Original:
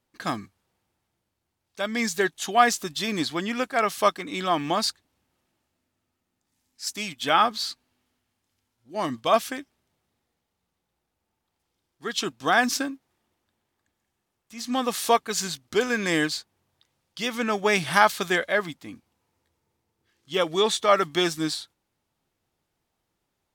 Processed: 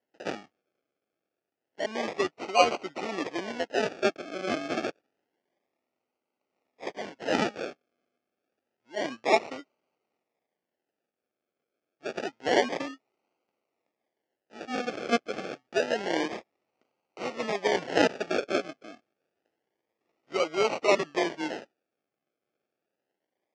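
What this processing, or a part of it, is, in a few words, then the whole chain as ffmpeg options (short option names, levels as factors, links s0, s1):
circuit-bent sampling toy: -af "acrusher=samples=36:mix=1:aa=0.000001:lfo=1:lforange=21.6:lforate=0.28,highpass=410,equalizer=f=1000:t=q:w=4:g=-7,equalizer=f=1500:t=q:w=4:g=-3,equalizer=f=3900:t=q:w=4:g=-8,lowpass=f=5400:w=0.5412,lowpass=f=5400:w=1.3066"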